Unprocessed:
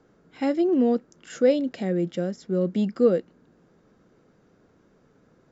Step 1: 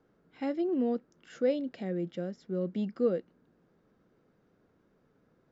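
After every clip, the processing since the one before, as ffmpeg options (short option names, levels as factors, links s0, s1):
-af "lowpass=4900,volume=0.376"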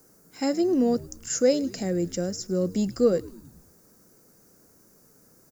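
-filter_complex "[0:a]aexciter=amount=14.4:drive=8.1:freq=5300,asplit=6[s0][s1][s2][s3][s4][s5];[s1]adelay=105,afreqshift=-83,volume=0.0891[s6];[s2]adelay=210,afreqshift=-166,volume=0.055[s7];[s3]adelay=315,afreqshift=-249,volume=0.0343[s8];[s4]adelay=420,afreqshift=-332,volume=0.0211[s9];[s5]adelay=525,afreqshift=-415,volume=0.0132[s10];[s0][s6][s7][s8][s9][s10]amix=inputs=6:normalize=0,volume=2.24"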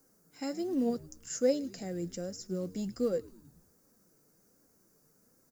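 -af "acrusher=bits=8:mode=log:mix=0:aa=0.000001,flanger=delay=3.6:depth=3.3:regen=63:speed=1.3:shape=sinusoidal,volume=0.531"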